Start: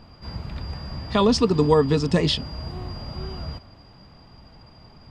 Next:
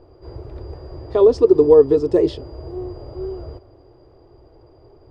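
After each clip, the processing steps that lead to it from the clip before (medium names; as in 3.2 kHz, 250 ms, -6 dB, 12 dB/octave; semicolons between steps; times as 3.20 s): FFT filter 120 Hz 0 dB, 200 Hz -19 dB, 360 Hz +15 dB, 900 Hz -3 dB, 2.7 kHz -14 dB, 5.7 kHz -12 dB; trim -1.5 dB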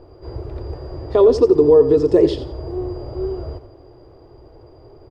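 peak limiter -8.5 dBFS, peak gain reduction 6.5 dB; feedback delay 86 ms, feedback 26%, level -12 dB; trim +4 dB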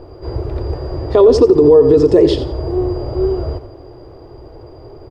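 peak limiter -9.5 dBFS, peak gain reduction 6.5 dB; trim +8 dB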